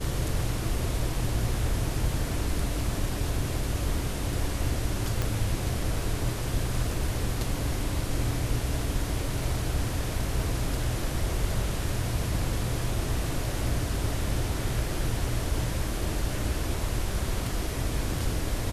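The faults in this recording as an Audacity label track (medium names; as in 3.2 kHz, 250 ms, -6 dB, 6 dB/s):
5.220000	5.220000	pop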